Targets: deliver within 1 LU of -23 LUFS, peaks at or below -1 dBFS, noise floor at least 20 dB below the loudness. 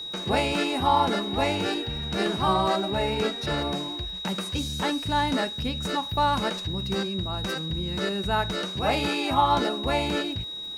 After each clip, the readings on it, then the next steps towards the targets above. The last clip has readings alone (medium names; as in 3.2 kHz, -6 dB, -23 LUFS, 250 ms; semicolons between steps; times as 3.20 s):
tick rate 59 per s; steady tone 3.8 kHz; tone level -33 dBFS; loudness -26.0 LUFS; peak level -10.0 dBFS; loudness target -23.0 LUFS
-> de-click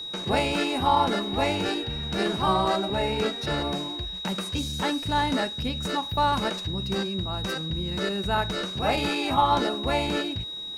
tick rate 0.28 per s; steady tone 3.8 kHz; tone level -33 dBFS
-> band-stop 3.8 kHz, Q 30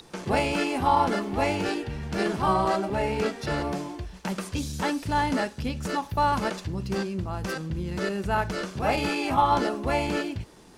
steady tone not found; loudness -27.0 LUFS; peak level -10.5 dBFS; loudness target -23.0 LUFS
-> trim +4 dB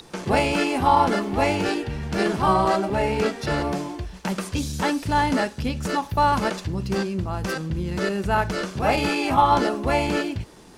loudness -23.0 LUFS; peak level -6.5 dBFS; noise floor -44 dBFS